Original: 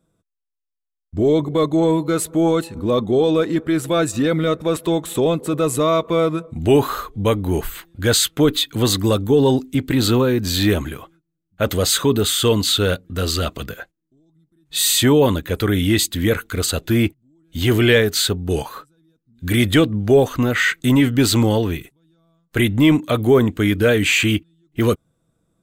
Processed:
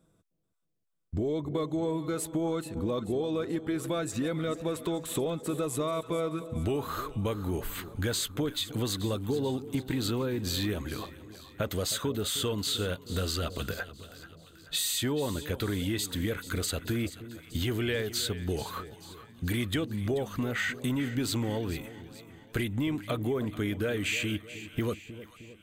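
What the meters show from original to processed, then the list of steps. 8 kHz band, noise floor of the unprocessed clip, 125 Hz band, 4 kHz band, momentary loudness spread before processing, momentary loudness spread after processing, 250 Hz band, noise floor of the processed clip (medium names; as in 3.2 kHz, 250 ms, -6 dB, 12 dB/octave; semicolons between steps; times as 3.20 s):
-12.5 dB, -78 dBFS, -12.5 dB, -12.5 dB, 9 LU, 9 LU, -13.5 dB, -55 dBFS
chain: compression 5:1, threshold -30 dBFS, peak gain reduction 18.5 dB; two-band feedback delay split 810 Hz, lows 311 ms, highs 435 ms, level -14 dB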